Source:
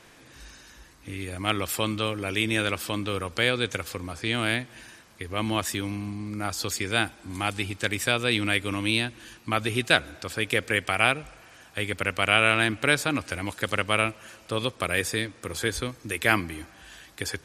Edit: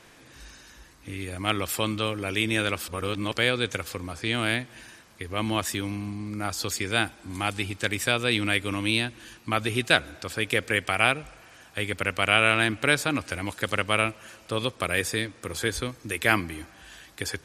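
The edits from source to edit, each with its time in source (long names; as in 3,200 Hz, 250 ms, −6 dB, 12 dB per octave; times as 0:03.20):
0:02.88–0:03.33: reverse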